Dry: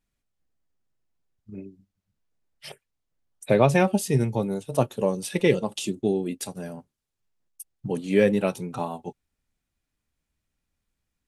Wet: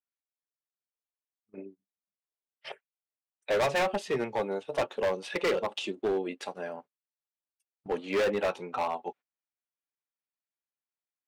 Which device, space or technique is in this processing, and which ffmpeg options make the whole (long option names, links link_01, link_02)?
walkie-talkie: -filter_complex "[0:a]asettb=1/sr,asplit=3[link_01][link_02][link_03];[link_01]atrim=end=1.574[link_04];[link_02]atrim=start=1.57:end=2.67,asetpts=PTS-STARTPTS,afade=type=in:duration=0.004:curve=qsin,afade=type=out:start_time=1.096:duration=0.004:curve=qsin,tiltshelf=frequency=680:gain=4.5[link_05];[link_03]atrim=start=2.666[link_06];[link_04][link_05]acrossfade=duration=0.004:curve1=hsin:curve2=qsin[link_07];[link_07][link_06]acrossfade=duration=0.004:curve1=qsin:curve2=hsin,highpass=560,lowpass=2500,asoftclip=type=hard:threshold=-28.5dB,agate=range=-19dB:threshold=-53dB:ratio=16:detection=peak,volume=5dB"